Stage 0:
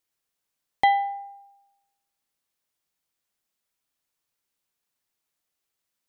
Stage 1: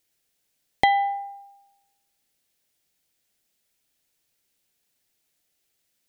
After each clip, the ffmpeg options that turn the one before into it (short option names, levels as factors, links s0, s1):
-af "equalizer=f=1100:t=o:w=0.73:g=-10,acompressor=threshold=0.0562:ratio=3,volume=2.66"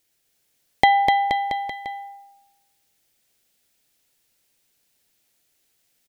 -af "aecho=1:1:250|475|677.5|859.8|1024:0.631|0.398|0.251|0.158|0.1,volume=1.5"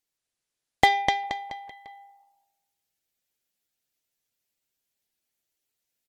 -af "aeval=exprs='0.891*(cos(1*acos(clip(val(0)/0.891,-1,1)))-cos(1*PI/2))+0.0224*(cos(3*acos(clip(val(0)/0.891,-1,1)))-cos(3*PI/2))+0.0891*(cos(7*acos(clip(val(0)/0.891,-1,1)))-cos(7*PI/2))':c=same,volume=0.891" -ar 48000 -c:a libopus -b:a 16k